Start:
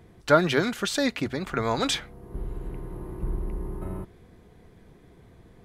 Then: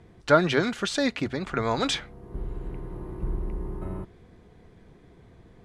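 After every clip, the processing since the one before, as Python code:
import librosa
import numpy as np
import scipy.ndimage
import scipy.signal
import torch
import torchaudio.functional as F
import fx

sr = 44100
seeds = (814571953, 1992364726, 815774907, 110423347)

y = scipy.signal.sosfilt(scipy.signal.bessel(8, 7400.0, 'lowpass', norm='mag', fs=sr, output='sos'), x)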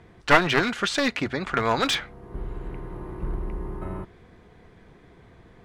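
y = np.minimum(x, 2.0 * 10.0 ** (-21.5 / 20.0) - x)
y = fx.peak_eq(y, sr, hz=1600.0, db=6.5, octaves=2.6)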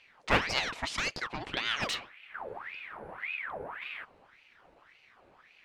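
y = fx.ring_lfo(x, sr, carrier_hz=1500.0, swing_pct=70, hz=1.8)
y = F.gain(torch.from_numpy(y), -6.5).numpy()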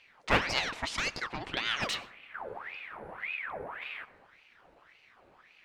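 y = fx.rev_plate(x, sr, seeds[0], rt60_s=0.89, hf_ratio=0.3, predelay_ms=80, drr_db=17.5)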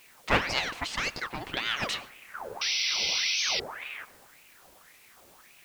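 y = fx.spec_paint(x, sr, seeds[1], shape='noise', start_s=2.61, length_s=1.0, low_hz=2000.0, high_hz=6000.0, level_db=-30.0)
y = fx.quant_dither(y, sr, seeds[2], bits=10, dither='triangular')
y = fx.record_warp(y, sr, rpm=45.0, depth_cents=160.0)
y = F.gain(torch.from_numpy(y), 1.5).numpy()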